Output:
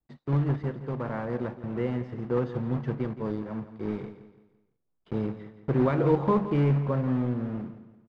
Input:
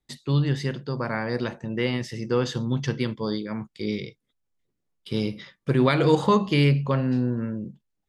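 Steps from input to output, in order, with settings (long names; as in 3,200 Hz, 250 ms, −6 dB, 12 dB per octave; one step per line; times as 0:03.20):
one scale factor per block 3 bits
low-pass filter 1,100 Hz 12 dB per octave
on a send: repeating echo 169 ms, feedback 38%, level −13 dB
on the sum: level −3.5 dB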